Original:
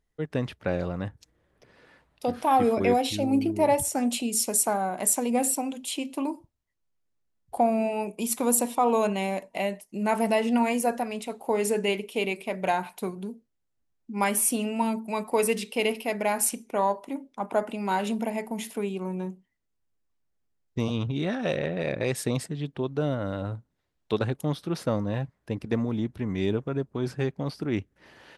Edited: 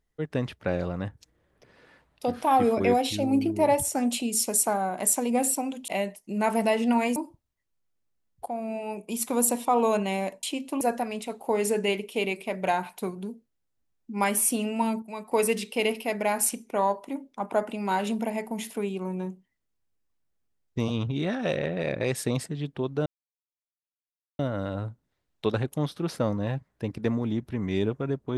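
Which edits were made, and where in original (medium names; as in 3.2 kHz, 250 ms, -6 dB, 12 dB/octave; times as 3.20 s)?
5.88–6.26 s: swap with 9.53–10.81 s
7.56–8.88 s: fade in equal-power, from -13 dB
15.02–15.31 s: gain -7.5 dB
23.06 s: insert silence 1.33 s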